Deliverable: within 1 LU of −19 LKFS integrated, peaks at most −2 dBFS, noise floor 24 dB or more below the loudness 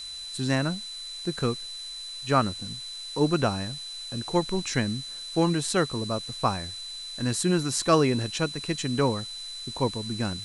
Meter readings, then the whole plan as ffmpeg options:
interfering tone 4,000 Hz; level of the tone −36 dBFS; background noise floor −39 dBFS; target noise floor −52 dBFS; integrated loudness −28.0 LKFS; sample peak −8.0 dBFS; target loudness −19.0 LKFS
→ -af "bandreject=frequency=4000:width=30"
-af "afftdn=noise_reduction=13:noise_floor=-39"
-af "volume=9dB,alimiter=limit=-2dB:level=0:latency=1"

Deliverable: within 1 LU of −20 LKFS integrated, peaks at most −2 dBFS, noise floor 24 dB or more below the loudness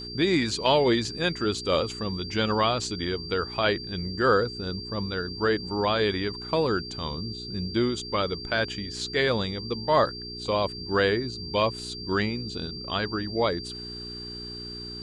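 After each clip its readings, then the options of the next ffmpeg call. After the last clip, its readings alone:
mains hum 60 Hz; hum harmonics up to 420 Hz; level of the hum −39 dBFS; interfering tone 4,700 Hz; level of the tone −37 dBFS; integrated loudness −27.0 LKFS; sample peak −7.5 dBFS; target loudness −20.0 LKFS
→ -af "bandreject=frequency=60:width_type=h:width=4,bandreject=frequency=120:width_type=h:width=4,bandreject=frequency=180:width_type=h:width=4,bandreject=frequency=240:width_type=h:width=4,bandreject=frequency=300:width_type=h:width=4,bandreject=frequency=360:width_type=h:width=4,bandreject=frequency=420:width_type=h:width=4"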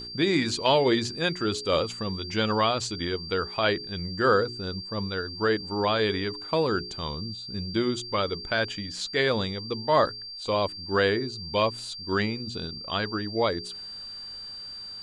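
mains hum none found; interfering tone 4,700 Hz; level of the tone −37 dBFS
→ -af "bandreject=frequency=4700:width=30"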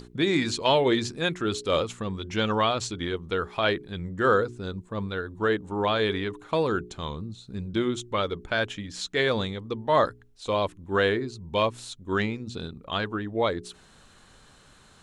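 interfering tone none found; integrated loudness −27.5 LKFS; sample peak −7.5 dBFS; target loudness −20.0 LKFS
→ -af "volume=7.5dB,alimiter=limit=-2dB:level=0:latency=1"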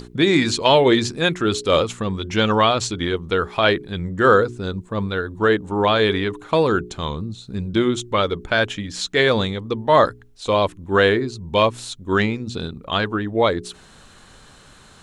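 integrated loudness −20.0 LKFS; sample peak −2.0 dBFS; background noise floor −48 dBFS

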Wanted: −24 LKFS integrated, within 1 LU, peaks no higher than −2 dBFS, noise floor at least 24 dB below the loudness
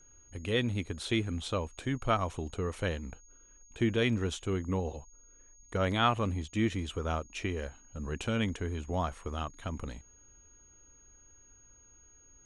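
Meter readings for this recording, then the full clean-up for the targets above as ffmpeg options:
interfering tone 6,600 Hz; level of the tone −58 dBFS; integrated loudness −33.5 LKFS; sample peak −13.5 dBFS; target loudness −24.0 LKFS
→ -af "bandreject=frequency=6600:width=30"
-af "volume=9.5dB"

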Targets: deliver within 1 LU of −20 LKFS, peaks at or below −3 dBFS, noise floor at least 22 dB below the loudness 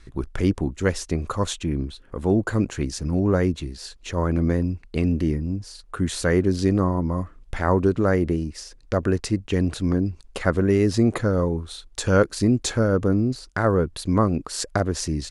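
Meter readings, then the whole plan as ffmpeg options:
integrated loudness −23.5 LKFS; sample peak −5.0 dBFS; target loudness −20.0 LKFS
→ -af "volume=3.5dB,alimiter=limit=-3dB:level=0:latency=1"

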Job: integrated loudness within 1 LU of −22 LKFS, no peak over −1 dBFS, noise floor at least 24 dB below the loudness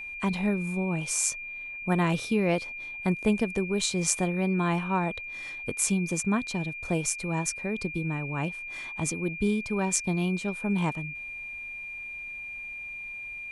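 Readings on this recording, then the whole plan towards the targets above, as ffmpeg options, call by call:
interfering tone 2,400 Hz; level of the tone −36 dBFS; integrated loudness −29.0 LKFS; sample peak −6.5 dBFS; target loudness −22.0 LKFS
→ -af "bandreject=frequency=2400:width=30"
-af "volume=7dB,alimiter=limit=-1dB:level=0:latency=1"

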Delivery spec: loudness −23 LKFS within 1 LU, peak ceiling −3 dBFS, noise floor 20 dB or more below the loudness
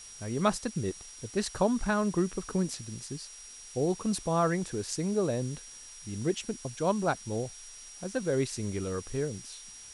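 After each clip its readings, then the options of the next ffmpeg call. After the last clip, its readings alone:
interfering tone 5,700 Hz; level of the tone −48 dBFS; background noise floor −48 dBFS; target noise floor −52 dBFS; integrated loudness −32.0 LKFS; sample peak −14.5 dBFS; target loudness −23.0 LKFS
→ -af "bandreject=frequency=5700:width=30"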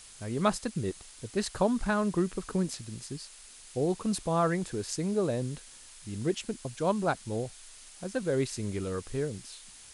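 interfering tone none found; background noise floor −51 dBFS; target noise floor −52 dBFS
→ -af "afftdn=noise_reduction=6:noise_floor=-51"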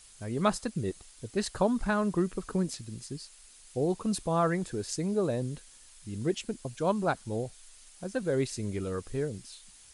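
background noise floor −55 dBFS; integrated loudness −32.0 LKFS; sample peak −14.5 dBFS; target loudness −23.0 LKFS
→ -af "volume=9dB"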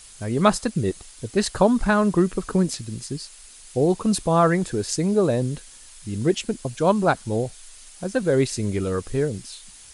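integrated loudness −23.0 LKFS; sample peak −5.5 dBFS; background noise floor −46 dBFS

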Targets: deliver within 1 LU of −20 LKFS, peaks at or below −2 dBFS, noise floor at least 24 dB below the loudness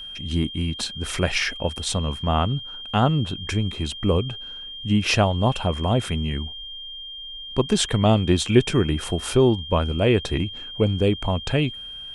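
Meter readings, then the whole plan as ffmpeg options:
interfering tone 3,200 Hz; level of the tone −34 dBFS; integrated loudness −23.0 LKFS; sample peak −3.5 dBFS; target loudness −20.0 LKFS
→ -af "bandreject=frequency=3200:width=30"
-af "volume=3dB,alimiter=limit=-2dB:level=0:latency=1"

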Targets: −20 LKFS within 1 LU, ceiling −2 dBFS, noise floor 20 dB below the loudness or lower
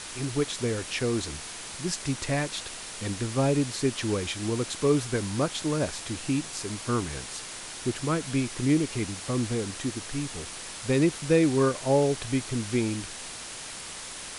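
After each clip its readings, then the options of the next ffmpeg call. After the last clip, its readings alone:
background noise floor −40 dBFS; target noise floor −49 dBFS; integrated loudness −28.5 LKFS; sample peak −11.0 dBFS; target loudness −20.0 LKFS
→ -af "afftdn=noise_reduction=9:noise_floor=-40"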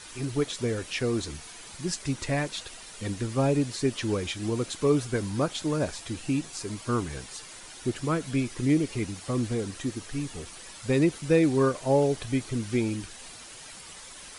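background noise floor −45 dBFS; target noise floor −49 dBFS
→ -af "afftdn=noise_reduction=6:noise_floor=-45"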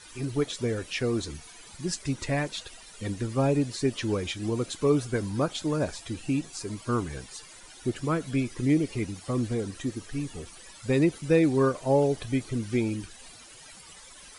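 background noise floor −49 dBFS; integrated loudness −28.5 LKFS; sample peak −11.5 dBFS; target loudness −20.0 LKFS
→ -af "volume=8.5dB"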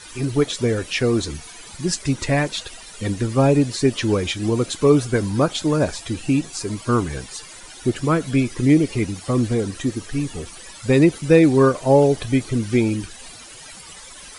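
integrated loudness −20.0 LKFS; sample peak −3.0 dBFS; background noise floor −41 dBFS

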